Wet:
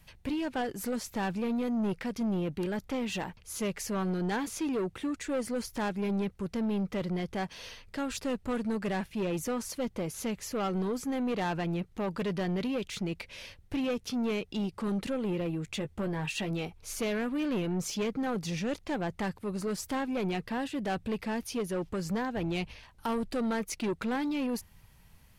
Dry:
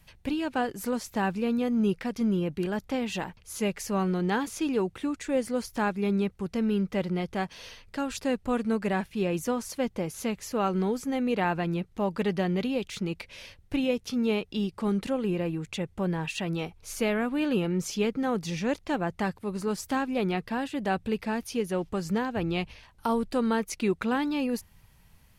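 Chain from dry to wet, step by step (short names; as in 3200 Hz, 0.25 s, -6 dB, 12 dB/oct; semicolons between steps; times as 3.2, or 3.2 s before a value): soft clip -26.5 dBFS, distortion -11 dB; 15.66–16.51 doubler 14 ms -8.5 dB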